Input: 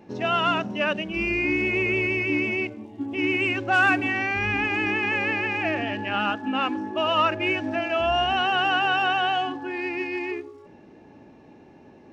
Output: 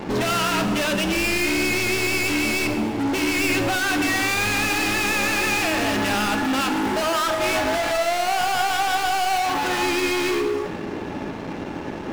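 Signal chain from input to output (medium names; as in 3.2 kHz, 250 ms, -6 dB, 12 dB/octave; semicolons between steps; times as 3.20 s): 7.01–9.83 s: high-order bell 930 Hz +11.5 dB; compression, threshold -26 dBFS, peak gain reduction 18 dB; waveshaping leveller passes 5; hard clipper -23.5 dBFS, distortion -12 dB; plate-style reverb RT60 1.5 s, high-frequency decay 0.75×, DRR 6 dB; trim +1.5 dB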